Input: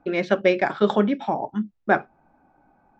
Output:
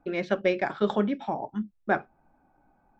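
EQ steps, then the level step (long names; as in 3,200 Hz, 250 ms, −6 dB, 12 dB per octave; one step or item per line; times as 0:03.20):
low-shelf EQ 63 Hz +9.5 dB
−6.0 dB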